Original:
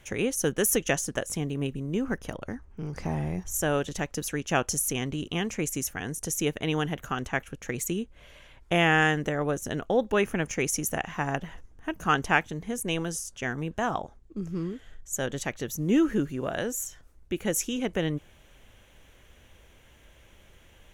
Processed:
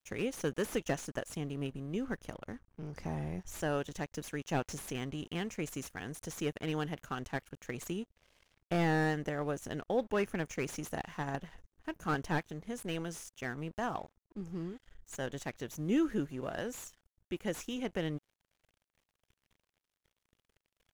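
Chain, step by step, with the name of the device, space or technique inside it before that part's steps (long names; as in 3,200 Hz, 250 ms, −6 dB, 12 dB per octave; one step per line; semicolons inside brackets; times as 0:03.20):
early transistor amplifier (dead-zone distortion −49 dBFS; slew-rate limiting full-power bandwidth 95 Hz)
level −7 dB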